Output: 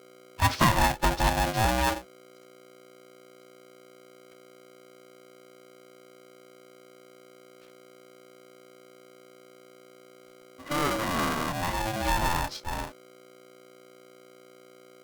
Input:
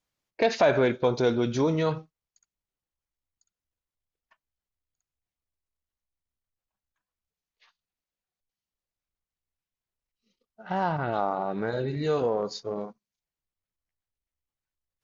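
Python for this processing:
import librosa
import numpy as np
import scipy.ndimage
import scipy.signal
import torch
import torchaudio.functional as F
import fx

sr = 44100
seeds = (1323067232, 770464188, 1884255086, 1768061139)

y = fx.pitch_keep_formants(x, sr, semitones=-4.0)
y = fx.add_hum(y, sr, base_hz=60, snr_db=21)
y = y * np.sign(np.sin(2.0 * np.pi * 440.0 * np.arange(len(y)) / sr))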